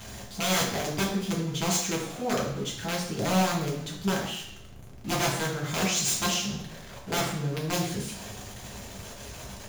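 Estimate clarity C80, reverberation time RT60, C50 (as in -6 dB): 7.0 dB, 0.70 s, 4.0 dB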